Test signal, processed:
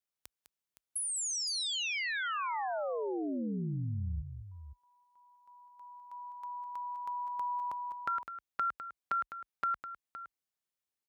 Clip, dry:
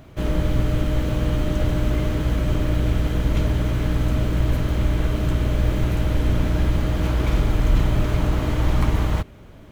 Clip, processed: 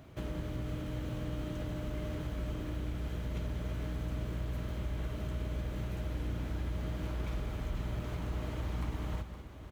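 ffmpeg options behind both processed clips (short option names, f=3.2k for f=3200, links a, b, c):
-af "highpass=f=42:w=0.5412,highpass=f=42:w=1.3066,acompressor=threshold=-30dB:ratio=2.5,aecho=1:1:204|515:0.299|0.251,volume=-8dB"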